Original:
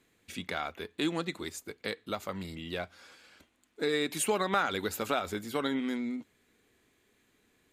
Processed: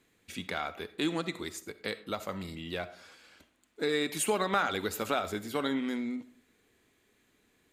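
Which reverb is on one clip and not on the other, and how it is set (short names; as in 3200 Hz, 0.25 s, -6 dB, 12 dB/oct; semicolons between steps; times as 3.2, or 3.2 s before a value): digital reverb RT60 0.52 s, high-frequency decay 0.5×, pre-delay 20 ms, DRR 14 dB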